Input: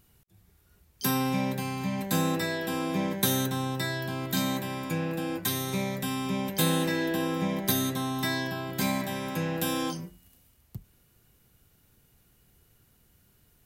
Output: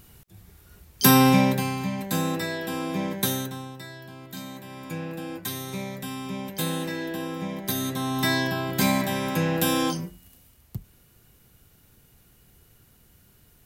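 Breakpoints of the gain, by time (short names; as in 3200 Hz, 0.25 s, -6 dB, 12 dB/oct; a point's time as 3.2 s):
1.29 s +11 dB
1.98 s +0.5 dB
3.25 s +0.5 dB
3.8 s -10 dB
4.54 s -10 dB
4.94 s -3 dB
7.63 s -3 dB
8.29 s +6 dB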